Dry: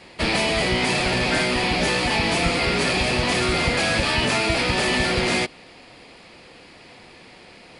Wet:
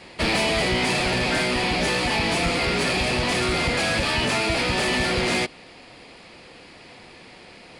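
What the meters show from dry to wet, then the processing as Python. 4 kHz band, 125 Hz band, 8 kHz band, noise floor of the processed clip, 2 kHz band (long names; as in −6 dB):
−1.5 dB, −1.5 dB, −1.0 dB, −46 dBFS, −1.5 dB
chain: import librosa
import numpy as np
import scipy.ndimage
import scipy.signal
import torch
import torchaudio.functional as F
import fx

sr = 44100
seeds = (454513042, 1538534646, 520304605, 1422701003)

y = fx.rider(x, sr, range_db=10, speed_s=2.0)
y = 10.0 ** (-14.5 / 20.0) * np.tanh(y / 10.0 ** (-14.5 / 20.0))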